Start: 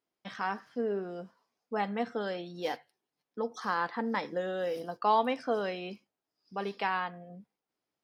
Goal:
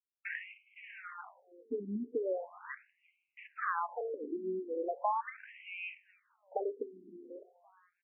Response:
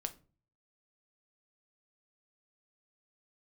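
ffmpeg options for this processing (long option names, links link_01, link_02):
-filter_complex "[0:a]acontrast=86,acrusher=bits=3:mode=log:mix=0:aa=0.000001,bandreject=frequency=60:width_type=h:width=6,bandreject=frequency=120:width_type=h:width=6,bandreject=frequency=180:width_type=h:width=6,acompressor=threshold=-31dB:ratio=12,acrusher=bits=8:dc=4:mix=0:aa=0.000001,asuperstop=centerf=5400:order=20:qfactor=0.77,aecho=1:1:412|824:0.0631|0.024,asplit=2[link_01][link_02];[1:a]atrim=start_sample=2205,asetrate=25578,aresample=44100[link_03];[link_02][link_03]afir=irnorm=-1:irlink=0,volume=-11dB[link_04];[link_01][link_04]amix=inputs=2:normalize=0,afftfilt=real='re*between(b*sr/1024,290*pow(3000/290,0.5+0.5*sin(2*PI*0.39*pts/sr))/1.41,290*pow(3000/290,0.5+0.5*sin(2*PI*0.39*pts/sr))*1.41)':imag='im*between(b*sr/1024,290*pow(3000/290,0.5+0.5*sin(2*PI*0.39*pts/sr))/1.41,290*pow(3000/290,0.5+0.5*sin(2*PI*0.39*pts/sr))*1.41)':win_size=1024:overlap=0.75,volume=1dB"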